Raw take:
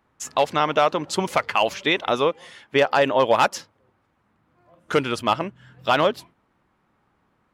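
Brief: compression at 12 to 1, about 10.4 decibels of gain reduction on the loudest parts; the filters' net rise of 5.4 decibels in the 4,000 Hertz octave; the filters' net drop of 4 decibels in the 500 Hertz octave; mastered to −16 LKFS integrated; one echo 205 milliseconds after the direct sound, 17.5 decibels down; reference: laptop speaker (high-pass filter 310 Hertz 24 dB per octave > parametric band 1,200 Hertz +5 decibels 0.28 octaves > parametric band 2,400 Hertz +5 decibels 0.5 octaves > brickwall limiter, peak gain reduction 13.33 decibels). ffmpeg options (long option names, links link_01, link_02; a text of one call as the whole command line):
ffmpeg -i in.wav -af "equalizer=frequency=500:width_type=o:gain=-5,equalizer=frequency=4000:width_type=o:gain=5.5,acompressor=threshold=-25dB:ratio=12,highpass=frequency=310:width=0.5412,highpass=frequency=310:width=1.3066,equalizer=frequency=1200:width_type=o:width=0.28:gain=5,equalizer=frequency=2400:width_type=o:width=0.5:gain=5,aecho=1:1:205:0.133,volume=18.5dB,alimiter=limit=-3.5dB:level=0:latency=1" out.wav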